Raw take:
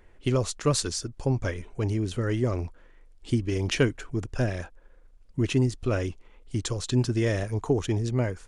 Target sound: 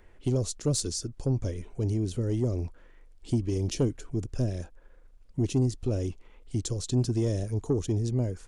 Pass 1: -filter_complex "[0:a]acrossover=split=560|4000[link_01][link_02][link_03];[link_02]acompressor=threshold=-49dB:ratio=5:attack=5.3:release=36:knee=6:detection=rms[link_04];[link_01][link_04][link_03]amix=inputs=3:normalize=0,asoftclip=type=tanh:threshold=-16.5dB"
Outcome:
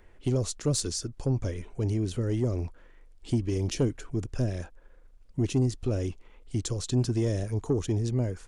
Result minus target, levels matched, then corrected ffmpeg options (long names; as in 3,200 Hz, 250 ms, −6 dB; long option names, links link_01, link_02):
downward compressor: peak gain reduction −7.5 dB
-filter_complex "[0:a]acrossover=split=560|4000[link_01][link_02][link_03];[link_02]acompressor=threshold=-58.5dB:ratio=5:attack=5.3:release=36:knee=6:detection=rms[link_04];[link_01][link_04][link_03]amix=inputs=3:normalize=0,asoftclip=type=tanh:threshold=-16.5dB"